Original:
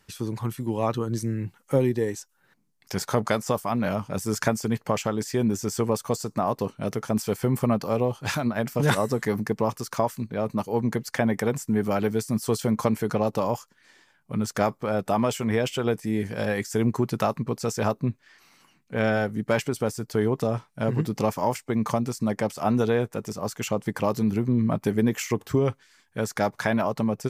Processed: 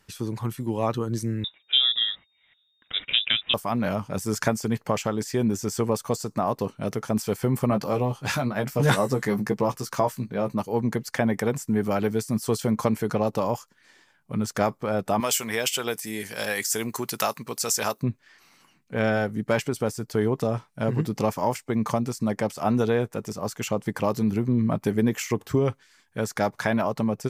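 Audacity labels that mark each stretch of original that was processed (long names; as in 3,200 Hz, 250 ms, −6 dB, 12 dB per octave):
1.440000	3.540000	voice inversion scrambler carrier 3,700 Hz
7.690000	10.540000	double-tracking delay 15 ms −6 dB
15.200000	18.030000	spectral tilt +4 dB per octave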